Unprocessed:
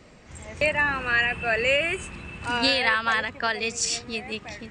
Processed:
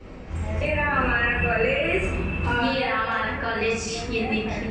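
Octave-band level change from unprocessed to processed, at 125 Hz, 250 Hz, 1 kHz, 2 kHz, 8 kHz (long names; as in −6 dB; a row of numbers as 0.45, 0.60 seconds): +11.0, +7.0, +2.5, −1.0, −8.0 decibels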